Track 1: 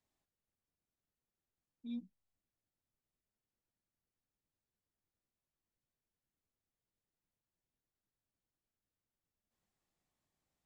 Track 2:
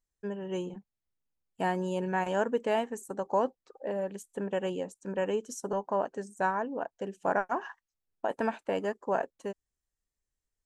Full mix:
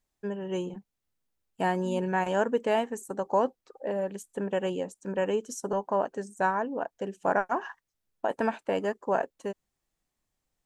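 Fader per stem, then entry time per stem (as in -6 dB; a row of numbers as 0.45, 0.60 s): +2.0, +2.5 dB; 0.00, 0.00 s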